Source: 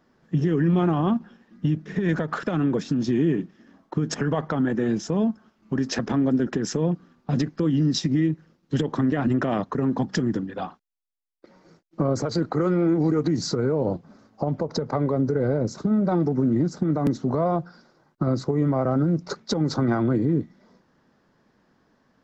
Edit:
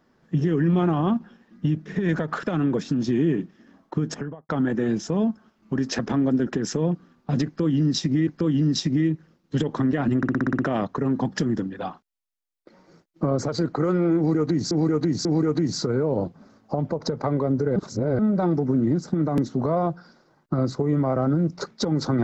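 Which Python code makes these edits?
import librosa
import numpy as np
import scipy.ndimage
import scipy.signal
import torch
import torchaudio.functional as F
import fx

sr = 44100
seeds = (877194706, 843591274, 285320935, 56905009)

y = fx.studio_fade_out(x, sr, start_s=3.98, length_s=0.51)
y = fx.edit(y, sr, fx.repeat(start_s=7.46, length_s=0.81, count=2),
    fx.stutter(start_s=9.36, slice_s=0.06, count=8),
    fx.repeat(start_s=12.94, length_s=0.54, count=3),
    fx.reverse_span(start_s=15.45, length_s=0.43), tone=tone)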